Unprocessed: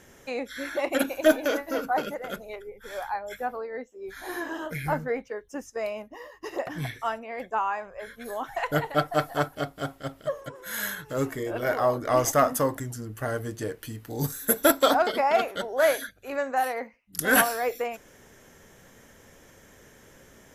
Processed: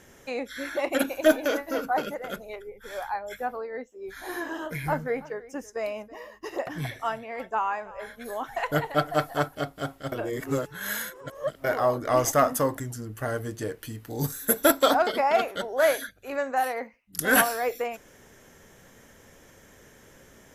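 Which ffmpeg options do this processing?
-filter_complex "[0:a]asettb=1/sr,asplit=3[a][b][c];[a]atrim=end=4.384[d];[b]atrim=start=4.38:end=9.19,asetpts=PTS-STARTPTS,afade=t=in:d=0.004:c=qsin,afade=t=out:st=4.806:d=0.004:c=qsin,aecho=1:1:327:0.106,atrim=end_sample=212121[e];[c]atrim=start=9.186[f];[d][e]acrossfade=d=0.004:c1=hsin:c2=qsin[g];[g][f]acrossfade=d=0.004:c1=qsin:c2=hsin,asplit=3[h][i][j];[h]atrim=end=10.122[k];[i]atrim=start=10.118:end=11.642,asetpts=PTS-STARTPTS,areverse[l];[j]atrim=start=11.638[m];[k][l]acrossfade=d=0.004:c1=hsin:c2=hsin[n];[n][m]acrossfade=d=0.004:c1=hsin:c2=hsin"

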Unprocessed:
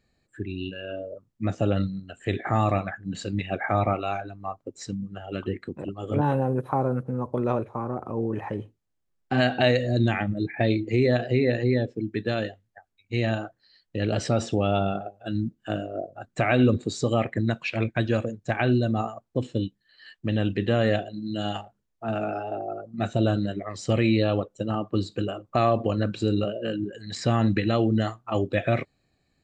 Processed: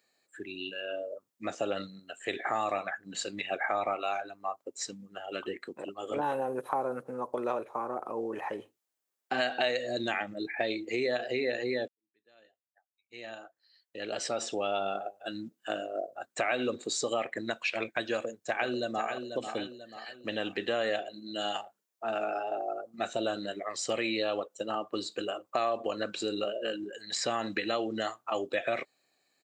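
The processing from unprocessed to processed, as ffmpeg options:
-filter_complex "[0:a]asplit=2[a][b];[b]afade=t=in:st=18.12:d=0.01,afade=t=out:st=19.07:d=0.01,aecho=0:1:490|980|1470|1960|2450:0.334965|0.150734|0.0678305|0.0305237|0.0137357[c];[a][c]amix=inputs=2:normalize=0,asplit=2[d][e];[d]atrim=end=11.88,asetpts=PTS-STARTPTS,afade=t=out:st=11.876:d=0.004:c=hsin[f];[e]atrim=start=11.88,asetpts=PTS-STARTPTS,afade=t=in:d=3.01:c=qua[g];[f][g]concat=n=2:v=0:a=1,highpass=480,highshelf=f=6.9k:g=10,acompressor=threshold=-28dB:ratio=2.5"

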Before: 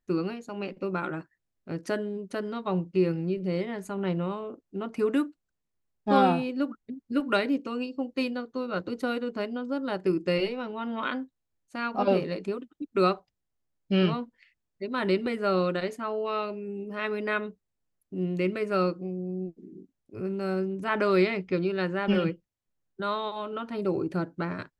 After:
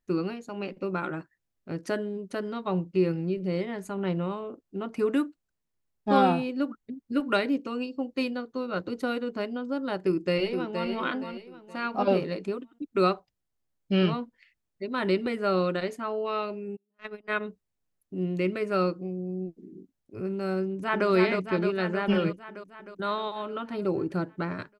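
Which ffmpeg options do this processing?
-filter_complex "[0:a]asplit=2[a][b];[b]afade=t=in:st=9.96:d=0.01,afade=t=out:st=10.9:d=0.01,aecho=0:1:470|940|1410|1880:0.473151|0.165603|0.057961|0.0202864[c];[a][c]amix=inputs=2:normalize=0,asplit=3[d][e][f];[d]afade=t=out:st=16.75:d=0.02[g];[e]agate=range=-44dB:threshold=-29dB:ratio=16:release=100:detection=peak,afade=t=in:st=16.75:d=0.02,afade=t=out:st=17.39:d=0.02[h];[f]afade=t=in:st=17.39:d=0.02[i];[g][h][i]amix=inputs=3:normalize=0,asplit=2[j][k];[k]afade=t=in:st=20.62:d=0.01,afade=t=out:st=21.08:d=0.01,aecho=0:1:310|620|930|1240|1550|1860|2170|2480|2790|3100|3410|3720:0.630957|0.44167|0.309169|0.216418|0.151493|0.106045|0.0742315|0.0519621|0.0363734|0.0254614|0.017823|0.0124761[l];[j][l]amix=inputs=2:normalize=0"

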